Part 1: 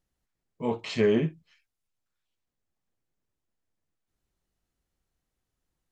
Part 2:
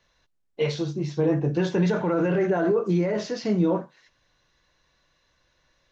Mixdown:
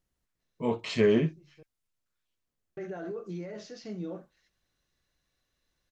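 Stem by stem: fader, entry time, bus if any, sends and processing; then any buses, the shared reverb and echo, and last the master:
0.0 dB, 0.00 s, no send, notch 800 Hz, Q 12
-15.5 dB, 0.40 s, muted 1.63–2.77, no send, high shelf 4400 Hz +7 dB; notch 970 Hz, Q 5.7; auto duck -22 dB, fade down 1.95 s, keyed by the first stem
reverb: off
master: dry

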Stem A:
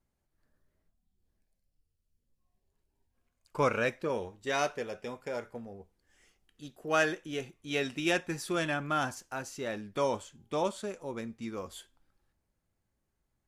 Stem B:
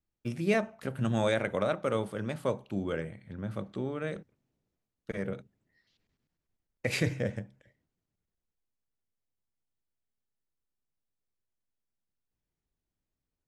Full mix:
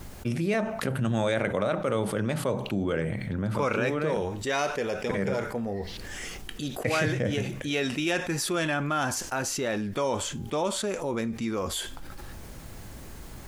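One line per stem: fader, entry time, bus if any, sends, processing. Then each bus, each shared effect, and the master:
-2.5 dB, 0.00 s, no send, dry
-1.5 dB, 0.00 s, no send, dry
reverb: off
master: fast leveller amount 70%

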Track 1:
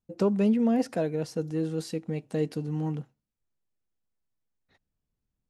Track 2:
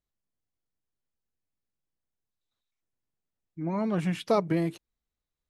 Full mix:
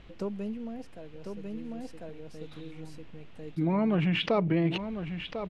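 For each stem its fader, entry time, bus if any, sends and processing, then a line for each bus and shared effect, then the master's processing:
-6.5 dB, 0.00 s, no send, echo send -9.5 dB, auto duck -12 dB, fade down 0.95 s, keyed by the second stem
-5.5 dB, 0.00 s, no send, echo send -9.5 dB, synth low-pass 2800 Hz, resonance Q 2.6; tilt shelf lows +3.5 dB; fast leveller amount 70%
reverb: off
echo: echo 1.047 s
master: dry

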